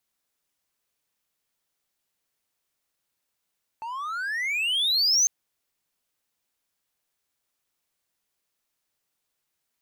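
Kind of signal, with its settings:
pitch glide with a swell triangle, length 1.45 s, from 875 Hz, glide +34.5 semitones, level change +15 dB, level −14.5 dB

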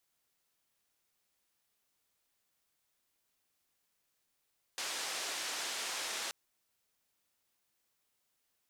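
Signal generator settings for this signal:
band-limited noise 410–6,900 Hz, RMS −39 dBFS 1.53 s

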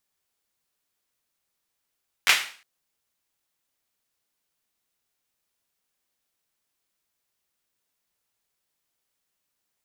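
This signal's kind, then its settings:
synth clap length 0.36 s, bursts 3, apart 11 ms, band 2,200 Hz, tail 0.43 s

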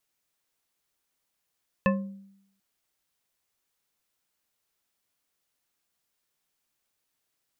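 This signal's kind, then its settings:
struck glass bar, length 0.74 s, lowest mode 196 Hz, decay 0.78 s, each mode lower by 2 dB, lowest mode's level −19.5 dB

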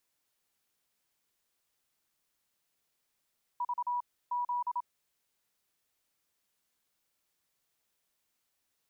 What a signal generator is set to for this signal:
Morse code "V Z" 27 words per minute 974 Hz −29.5 dBFS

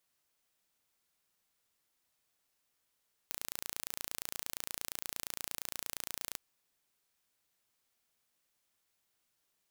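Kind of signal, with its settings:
impulse train 28.6 per second, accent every 0, −11 dBFS 3.06 s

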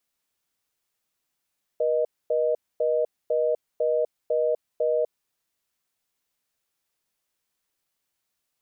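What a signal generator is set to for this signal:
call progress tone reorder tone, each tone −23 dBFS 3.28 s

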